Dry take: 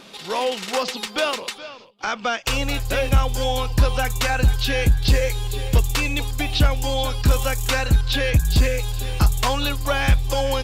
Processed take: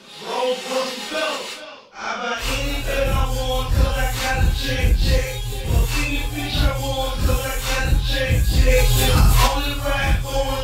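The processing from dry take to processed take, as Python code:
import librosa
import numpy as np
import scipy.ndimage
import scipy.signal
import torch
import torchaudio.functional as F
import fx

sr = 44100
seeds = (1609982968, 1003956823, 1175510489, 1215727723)

p1 = fx.phase_scramble(x, sr, seeds[0], window_ms=200)
p2 = np.clip(p1, -10.0 ** (-14.0 / 20.0), 10.0 ** (-14.0 / 20.0))
p3 = p1 + F.gain(torch.from_numpy(p2), -11.5).numpy()
p4 = fx.env_flatten(p3, sr, amount_pct=70, at=(8.67, 9.46), fade=0.02)
y = F.gain(torch.from_numpy(p4), -2.0).numpy()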